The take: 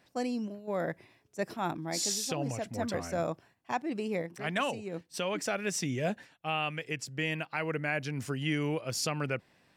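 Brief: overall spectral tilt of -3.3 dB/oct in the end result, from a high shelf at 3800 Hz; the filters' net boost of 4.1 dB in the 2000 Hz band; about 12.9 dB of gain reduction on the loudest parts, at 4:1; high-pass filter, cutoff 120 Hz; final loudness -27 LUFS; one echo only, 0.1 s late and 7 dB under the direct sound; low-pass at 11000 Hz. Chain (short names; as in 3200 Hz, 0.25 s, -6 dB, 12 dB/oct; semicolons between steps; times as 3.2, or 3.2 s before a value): HPF 120 Hz; LPF 11000 Hz; bell 2000 Hz +4 dB; high shelf 3800 Hz +4.5 dB; compressor 4:1, threshold -41 dBFS; echo 0.1 s -7 dB; gain +15 dB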